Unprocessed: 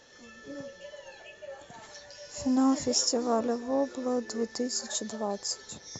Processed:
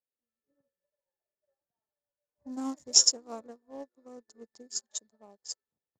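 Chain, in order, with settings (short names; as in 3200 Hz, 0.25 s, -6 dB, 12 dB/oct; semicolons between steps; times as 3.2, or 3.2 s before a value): Wiener smoothing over 15 samples; low-pass opened by the level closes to 1100 Hz, open at -28 dBFS; high shelf 3000 Hz +3 dB, from 2.52 s +11.5 dB; upward expander 2.5:1, over -45 dBFS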